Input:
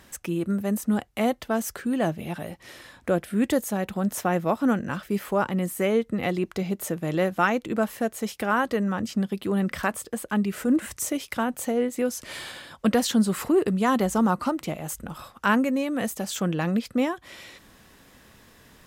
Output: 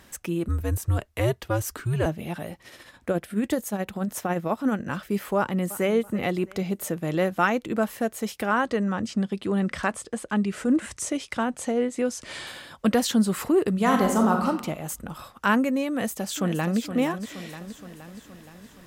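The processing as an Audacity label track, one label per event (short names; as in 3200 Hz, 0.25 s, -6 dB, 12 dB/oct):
0.480000	2.060000	frequency shift -120 Hz
2.600000	4.860000	tremolo 14 Hz, depth 51%
5.370000	5.900000	echo throw 0.33 s, feedback 35%, level -17 dB
8.490000	12.470000	LPF 9400 Hz 24 dB/oct
13.730000	14.470000	reverb throw, RT60 0.82 s, DRR 2 dB
15.900000	16.780000	echo throw 0.47 s, feedback 60%, level -9.5 dB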